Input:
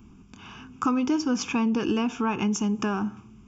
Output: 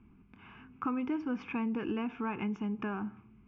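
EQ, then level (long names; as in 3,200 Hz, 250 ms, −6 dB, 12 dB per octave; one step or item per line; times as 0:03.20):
transistor ladder low-pass 2,300 Hz, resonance 60%
parametric band 1,700 Hz −4.5 dB 1.6 octaves
+1.5 dB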